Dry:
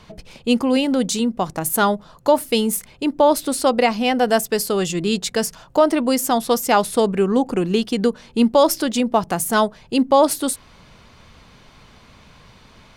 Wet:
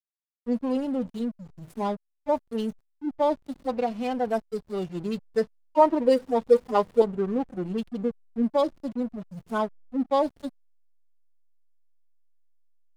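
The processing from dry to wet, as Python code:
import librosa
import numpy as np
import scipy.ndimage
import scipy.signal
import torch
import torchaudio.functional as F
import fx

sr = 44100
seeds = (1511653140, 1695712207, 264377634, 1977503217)

y = fx.hpss_only(x, sr, part='harmonic')
y = fx.small_body(y, sr, hz=(490.0, 940.0, 1900.0), ring_ms=30, db=14, at=(5.32, 7.02))
y = fx.backlash(y, sr, play_db=-26.0)
y = y * librosa.db_to_amplitude(-8.5)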